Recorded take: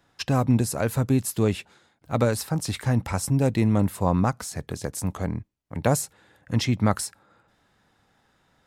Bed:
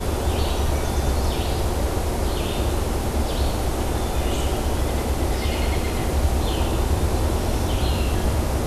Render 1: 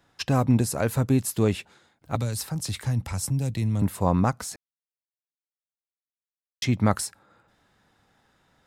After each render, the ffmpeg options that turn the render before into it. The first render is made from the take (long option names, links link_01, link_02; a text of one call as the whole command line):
ffmpeg -i in.wav -filter_complex "[0:a]asettb=1/sr,asplit=3[link_01][link_02][link_03];[link_01]atrim=end=2.154[link_04];[link_02]atrim=start=2.15:end=3.82,asetpts=PTS-STARTPTS,afade=type=in:duration=0.004:curve=qsin,afade=type=out:start_time=1.666:duration=0.004:curve=qsin,acrossover=split=160|3000[link_05][link_06][link_07];[link_06]acompressor=threshold=-40dB:ratio=2.5:attack=3.2:release=140:knee=2.83:detection=peak[link_08];[link_05][link_08][link_07]amix=inputs=3:normalize=0[link_09];[link_03]atrim=start=3.816[link_10];[link_04][link_09]acrossfade=duration=0.004:curve1=hsin:curve2=qsin[link_11];[link_11][link_10]acrossfade=duration=0.004:curve1=qsin:curve2=hsin,asplit=3[link_12][link_13][link_14];[link_12]atrim=end=4.56,asetpts=PTS-STARTPTS,afade=type=out:start_time=4.556:duration=0.004:curve=hsin[link_15];[link_13]atrim=start=4.56:end=6.62,asetpts=PTS-STARTPTS,volume=0[link_16];[link_14]atrim=start=6.62,asetpts=PTS-STARTPTS,afade=type=in:duration=0.004:curve=hsin[link_17];[link_15][link_16][link_17]concat=n=3:v=0:a=1" out.wav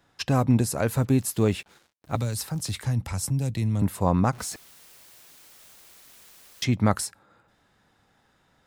ffmpeg -i in.wav -filter_complex "[0:a]asettb=1/sr,asplit=3[link_01][link_02][link_03];[link_01]atrim=end=0.924[link_04];[link_02]atrim=start=0.92:end=2.77,asetpts=PTS-STARTPTS,afade=type=in:duration=0.004:curve=qsin,afade=type=out:start_time=1.846:duration=0.004:curve=qsin,acrusher=bits=8:mix=0:aa=0.5[link_05];[link_03]atrim=start=2.766[link_06];[link_04][link_05]acrossfade=duration=0.004:curve1=hsin:curve2=qsin[link_07];[link_07][link_06]acrossfade=duration=0.004:curve1=qsin:curve2=hsin,asettb=1/sr,asplit=3[link_08][link_09][link_10];[link_08]atrim=end=4.334[link_11];[link_09]atrim=start=4.33:end=6.64,asetpts=PTS-STARTPTS,afade=type=in:duration=0.004:curve=qsin,afade=type=out:start_time=2.306:duration=0.004:curve=qsin,aeval=exprs='val(0)+0.5*0.01*sgn(val(0))':channel_layout=same[link_12];[link_10]atrim=start=6.636[link_13];[link_11][link_12]acrossfade=duration=0.004:curve1=hsin:curve2=qsin[link_14];[link_14][link_13]acrossfade=duration=0.004:curve1=qsin:curve2=hsin" out.wav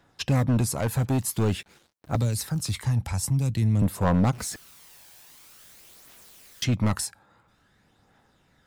ffmpeg -i in.wav -af "volume=19.5dB,asoftclip=hard,volume=-19.5dB,aphaser=in_gain=1:out_gain=1:delay=1.3:decay=0.35:speed=0.49:type=triangular" out.wav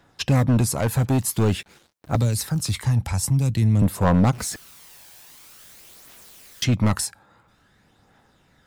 ffmpeg -i in.wav -af "volume=4dB" out.wav